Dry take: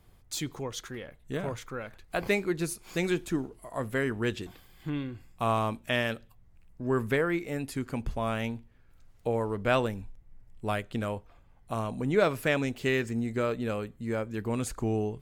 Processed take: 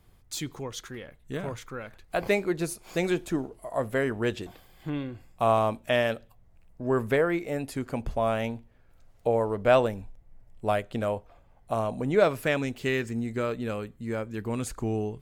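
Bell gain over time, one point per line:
bell 630 Hz 0.93 oct
1.82 s -1 dB
2.4 s +8 dB
11.93 s +8 dB
12.67 s -0.5 dB

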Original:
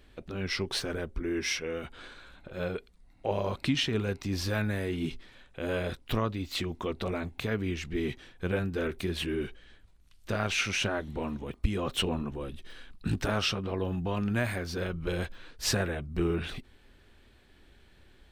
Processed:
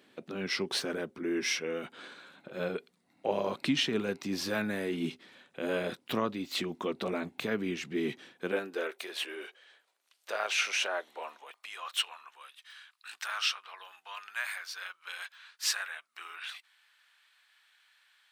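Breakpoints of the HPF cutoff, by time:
HPF 24 dB/oct
8.31 s 170 Hz
8.94 s 510 Hz
10.98 s 510 Hz
12.01 s 1100 Hz

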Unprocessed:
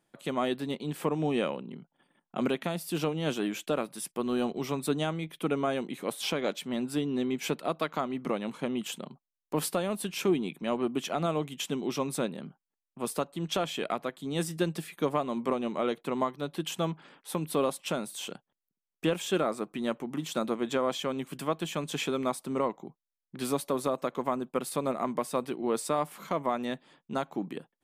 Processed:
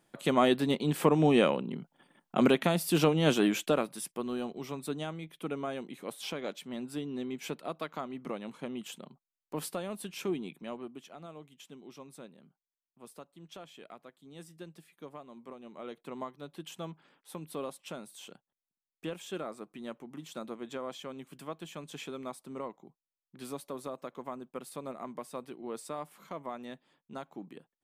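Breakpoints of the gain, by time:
3.5 s +5 dB
4.44 s -7 dB
10.55 s -7 dB
11.08 s -18 dB
15.58 s -18 dB
16.05 s -10.5 dB

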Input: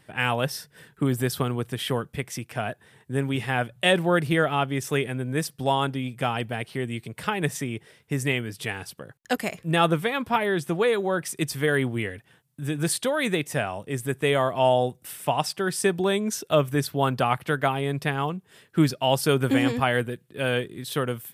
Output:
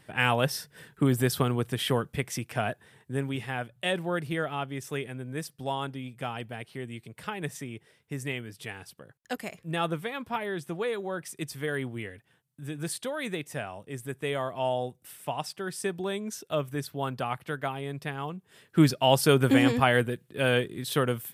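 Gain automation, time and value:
2.68 s 0 dB
3.63 s -8.5 dB
18.21 s -8.5 dB
18.85 s +0.5 dB

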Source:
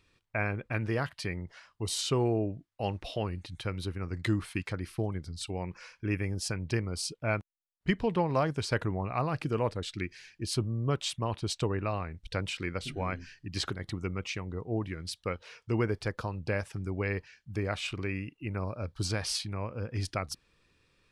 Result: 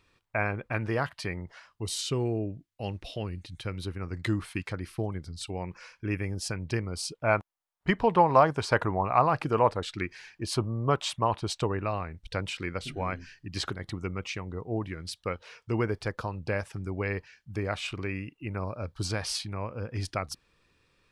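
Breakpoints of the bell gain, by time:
bell 920 Hz 1.7 oct
1.54 s +5.5 dB
2.04 s -6 dB
3.45 s -6 dB
3.91 s +2 dB
6.97 s +2 dB
7.38 s +12 dB
11.13 s +12 dB
11.89 s +3 dB

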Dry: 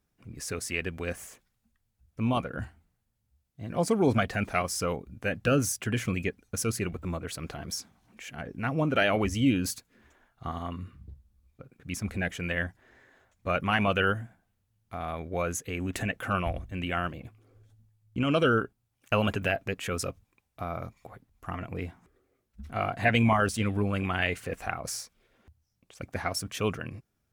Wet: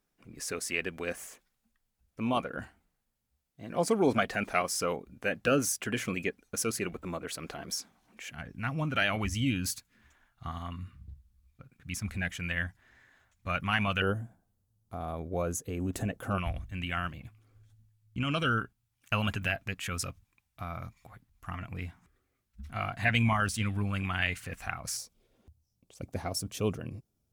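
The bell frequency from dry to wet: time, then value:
bell -12.5 dB 1.6 oct
88 Hz
from 8.32 s 440 Hz
from 14.02 s 2200 Hz
from 16.38 s 450 Hz
from 24.97 s 1700 Hz

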